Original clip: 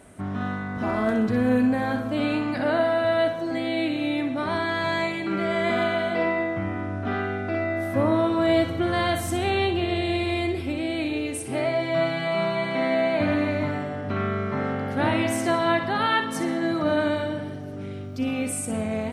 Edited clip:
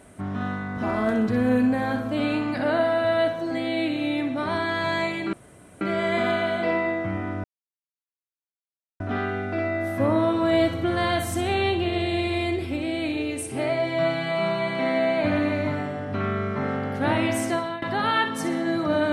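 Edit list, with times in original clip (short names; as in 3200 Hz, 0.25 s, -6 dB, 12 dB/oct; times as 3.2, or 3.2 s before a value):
5.33 insert room tone 0.48 s
6.96 insert silence 1.56 s
15.41–15.78 fade out linear, to -19.5 dB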